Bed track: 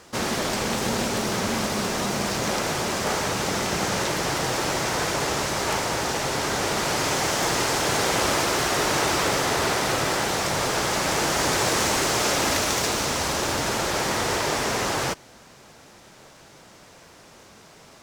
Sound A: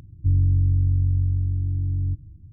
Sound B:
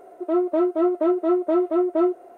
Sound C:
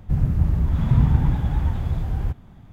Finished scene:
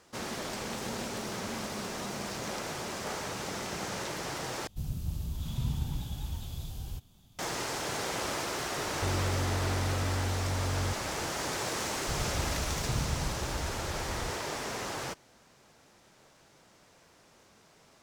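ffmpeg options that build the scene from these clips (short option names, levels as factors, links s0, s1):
-filter_complex "[3:a]asplit=2[s0][s1];[0:a]volume=0.266[s2];[s0]aexciter=amount=6.5:drive=8.6:freq=2900[s3];[1:a]asoftclip=type=hard:threshold=0.0447[s4];[s2]asplit=2[s5][s6];[s5]atrim=end=4.674[s7];[s3]atrim=end=2.72,asetpts=PTS-STARTPTS,volume=0.168[s8];[s6]atrim=start=7.386[s9];[s4]atrim=end=2.52,asetpts=PTS-STARTPTS,volume=0.668,afade=t=in:d=0.004:c=hsin,afade=t=out:st=2.516:d=0.004:c=hsin,adelay=8780[s10];[s1]atrim=end=2.72,asetpts=PTS-STARTPTS,volume=0.158,afade=t=in:d=0.004:c=hsin,afade=t=out:st=2.716:d=0.004:c=hsin,adelay=11980[s11];[s7][s8]acrossfade=d=0.004:c1=hsin:c2=hsin[s12];[s12][s9]acrossfade=d=0.004:c1=hsin:c2=hsin[s13];[s13][s10][s11]amix=inputs=3:normalize=0"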